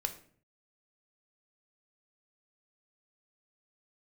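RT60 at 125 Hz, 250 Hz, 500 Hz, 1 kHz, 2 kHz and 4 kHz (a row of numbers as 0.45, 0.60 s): 0.80, 0.65, 0.55, 0.45, 0.45, 0.35 s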